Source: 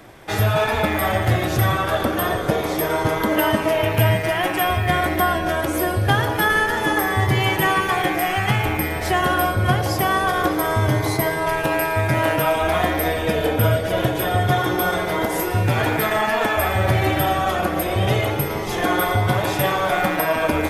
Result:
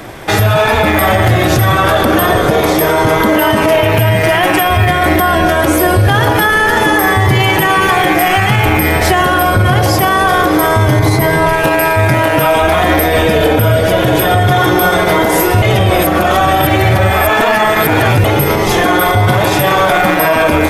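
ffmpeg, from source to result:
-filter_complex "[0:a]asettb=1/sr,asplit=3[s0][s1][s2];[s0]atrim=end=10.994[s3];[s1]atrim=start=10.99:end=11.53,asetpts=PTS-STARTPTS,afade=t=in:d=0.004:c=qsin,afade=t=out:st=0.536:d=0.004:c=qsin,bass=f=250:g=6,treble=f=4000:g=-2[s4];[s2]atrim=start=11.526[s5];[s3][s4]acrossfade=d=0.004:c1=hsin:c2=qsin[s6];[s6][s5]acrossfade=d=0.004:c1=qsin:c2=hsin,asplit=3[s7][s8][s9];[s7]atrim=end=15.622[s10];[s8]atrim=start=15.618:end=18.242,asetpts=PTS-STARTPTS,areverse[s11];[s9]atrim=start=18.238[s12];[s10][s11]acrossfade=d=0.004:c1=hsin:c2=hsin[s13];[s13][s12]acrossfade=d=0.004:c1=hsin:c2=hsin,alimiter=level_in=6.31:limit=0.891:release=50:level=0:latency=1,volume=0.891"

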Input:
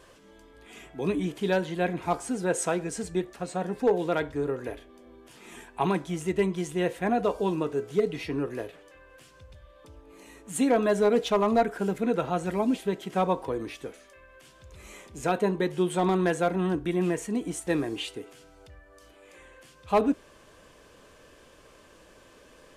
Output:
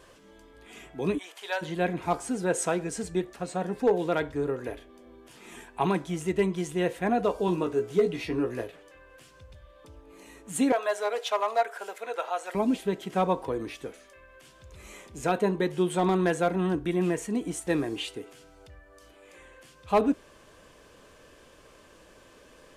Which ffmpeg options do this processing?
-filter_complex "[0:a]asplit=3[s0][s1][s2];[s0]afade=t=out:st=1.17:d=0.02[s3];[s1]highpass=f=670:w=0.5412,highpass=f=670:w=1.3066,afade=t=in:st=1.17:d=0.02,afade=t=out:st=1.61:d=0.02[s4];[s2]afade=t=in:st=1.61:d=0.02[s5];[s3][s4][s5]amix=inputs=3:normalize=0,asettb=1/sr,asplit=3[s6][s7][s8];[s6]atrim=end=7.464[s9];[s7]atrim=start=7.46:end=8.64,asetpts=PTS-STARTPTS,afade=t=in:d=0.004:c=qsin,afade=t=out:st=1.176:d=0.004:c=qsin,asplit=2[s10][s11];[s11]adelay=17,volume=0.501[s12];[s10][s12]amix=inputs=2:normalize=0,atrim=end_sample=52038[s13];[s8]atrim=start=8.636[s14];[s9][s13]acrossfade=d=0.004:c1=hsin:c2=qsin[s15];[s15][s14]acrossfade=d=0.004:c1=qsin:c2=hsin,asettb=1/sr,asplit=3[s16][s17][s18];[s16]atrim=end=10.724[s19];[s17]atrim=start=10.72:end=12.55,asetpts=PTS-STARTPTS,afade=t=in:d=0.004:c=qsin,afade=t=out:st=1.826:d=0.004:c=qsin,highpass=f=570:w=0.5412,highpass=f=570:w=1.3066[s20];[s18]atrim=start=12.546[s21];[s19][s20]acrossfade=d=0.004:c1=hsin:c2=qsin[s22];[s22][s21]acrossfade=d=0.004:c1=qsin:c2=hsin"

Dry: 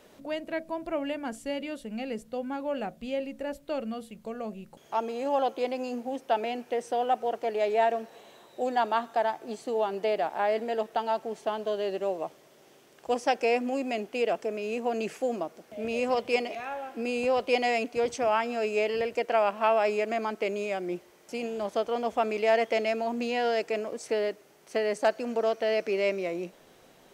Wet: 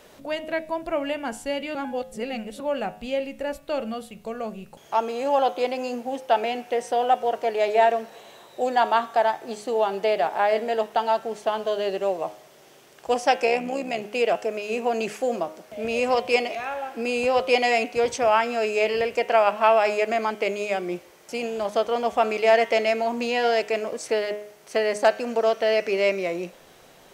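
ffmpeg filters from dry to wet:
-filter_complex "[0:a]asplit=3[s0][s1][s2];[s0]afade=t=out:st=13.45:d=0.02[s3];[s1]tremolo=f=69:d=0.571,afade=t=in:st=13.45:d=0.02,afade=t=out:st=14.01:d=0.02[s4];[s2]afade=t=in:st=14.01:d=0.02[s5];[s3][s4][s5]amix=inputs=3:normalize=0,asplit=3[s6][s7][s8];[s6]atrim=end=1.752[s9];[s7]atrim=start=1.748:end=2.602,asetpts=PTS-STARTPTS,areverse[s10];[s8]atrim=start=2.598[s11];[s9][s10]acrossfade=d=0.004:c1=hsin:c2=hsin[s12];[s12][s11]acrossfade=d=0.004:c1=hsin:c2=hsin,equalizer=f=270:t=o:w=1.4:g=-5,bandreject=f=104.2:t=h:w=4,bandreject=f=208.4:t=h:w=4,bandreject=f=312.6:t=h:w=4,bandreject=f=416.8:t=h:w=4,bandreject=f=521:t=h:w=4,bandreject=f=625.2:t=h:w=4,bandreject=f=729.4:t=h:w=4,bandreject=f=833.6:t=h:w=4,bandreject=f=937.8:t=h:w=4,bandreject=f=1042:t=h:w=4,bandreject=f=1146.2:t=h:w=4,bandreject=f=1250.4:t=h:w=4,bandreject=f=1354.6:t=h:w=4,bandreject=f=1458.8:t=h:w=4,bandreject=f=1563:t=h:w=4,bandreject=f=1667.2:t=h:w=4,bandreject=f=1771.4:t=h:w=4,bandreject=f=1875.6:t=h:w=4,bandreject=f=1979.8:t=h:w=4,bandreject=f=2084:t=h:w=4,bandreject=f=2188.2:t=h:w=4,bandreject=f=2292.4:t=h:w=4,bandreject=f=2396.6:t=h:w=4,bandreject=f=2500.8:t=h:w=4,bandreject=f=2605:t=h:w=4,bandreject=f=2709.2:t=h:w=4,bandreject=f=2813.4:t=h:w=4,bandreject=f=2917.6:t=h:w=4,bandreject=f=3021.8:t=h:w=4,bandreject=f=3126:t=h:w=4,bandreject=f=3230.2:t=h:w=4,bandreject=f=3334.4:t=h:w=4,bandreject=f=3438.6:t=h:w=4,bandreject=f=3542.8:t=h:w=4,bandreject=f=3647:t=h:w=4,bandreject=f=3751.2:t=h:w=4,bandreject=f=3855.4:t=h:w=4,bandreject=f=3959.6:t=h:w=4,volume=2.24"

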